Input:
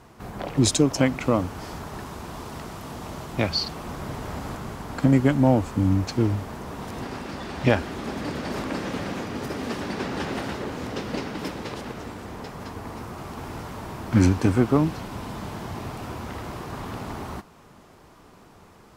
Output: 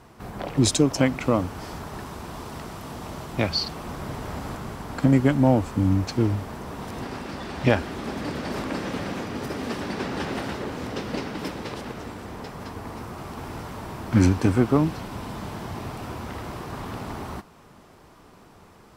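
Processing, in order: band-stop 6.7 kHz, Q 25

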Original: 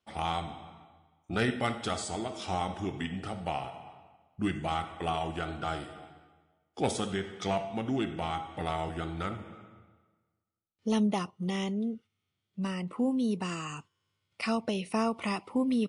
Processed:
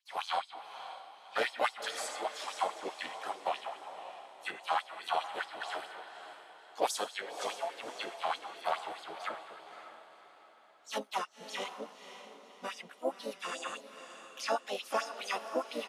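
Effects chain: harmony voices -4 st -15 dB, +4 st -6 dB, +5 st -13 dB; LFO high-pass sine 4.8 Hz 520–6000 Hz; echo that smears into a reverb 548 ms, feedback 43%, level -10.5 dB; trim -4 dB

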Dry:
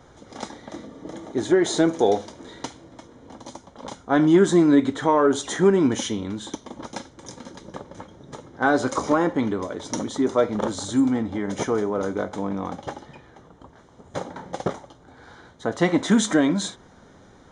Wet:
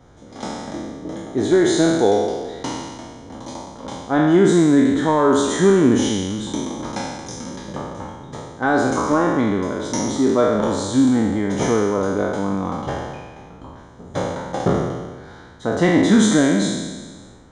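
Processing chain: spectral sustain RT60 1.38 s; level rider gain up to 6 dB; bass shelf 290 Hz +6.5 dB; trim -4.5 dB

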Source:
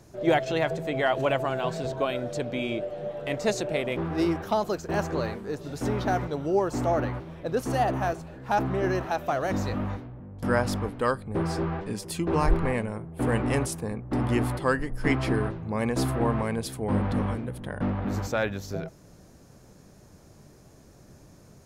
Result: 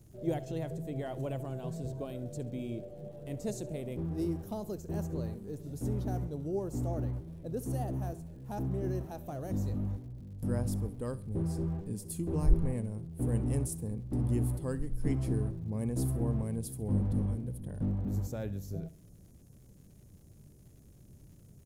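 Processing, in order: FFT filter 110 Hz 0 dB, 460 Hz -10 dB, 1.3 kHz -23 dB, 2.3 kHz -22 dB, 4.7 kHz -16 dB, 10 kHz -1 dB; crackle 180 per s -56 dBFS; feedback delay 67 ms, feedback 41%, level -18.5 dB; trim -1 dB

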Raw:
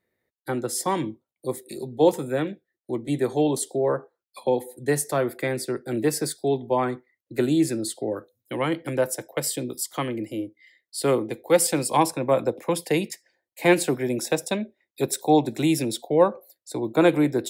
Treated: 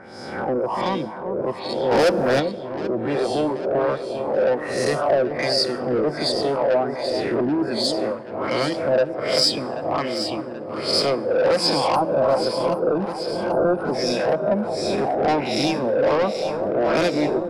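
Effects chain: reverse spectral sustain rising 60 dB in 1.25 s; reverb removal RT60 0.89 s; LFO low-pass sine 1.3 Hz 520–5100 Hz; saturation -18 dBFS, distortion -7 dB; 11.95–13.94 s: time-frequency box 1.6–8.6 kHz -27 dB; echo whose repeats swap between lows and highs 391 ms, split 1 kHz, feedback 79%, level -8 dB; on a send at -18 dB: reverberation RT60 1.2 s, pre-delay 6 ms; 1.91–2.40 s: on the sum: waveshaping leveller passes 2; graphic EQ with 31 bands 200 Hz +6 dB, 630 Hz +8 dB, 5 kHz +11 dB, 10 kHz +7 dB

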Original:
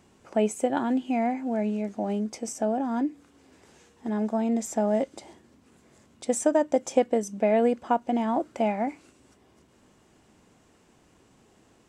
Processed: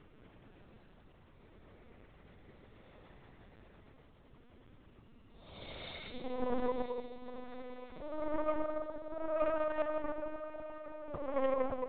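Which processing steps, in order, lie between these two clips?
compression 4:1, threshold -37 dBFS, peak gain reduction 17.5 dB; transient shaper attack 0 dB, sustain -8 dB; Paulstretch 11×, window 0.10 s, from 5.70 s; Chebyshev shaper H 2 -12 dB, 4 -42 dB, 6 -13 dB, 8 -41 dB, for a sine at -21 dBFS; echo that smears into a reverb 897 ms, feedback 50%, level -11 dB; LPC vocoder at 8 kHz pitch kept

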